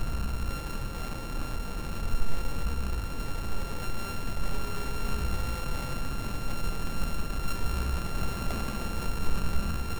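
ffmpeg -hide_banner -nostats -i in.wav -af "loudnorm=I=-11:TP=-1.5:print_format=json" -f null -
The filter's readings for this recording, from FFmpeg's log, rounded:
"input_i" : "-34.6",
"input_tp" : "-11.9",
"input_lra" : "1.8",
"input_thresh" : "-44.6",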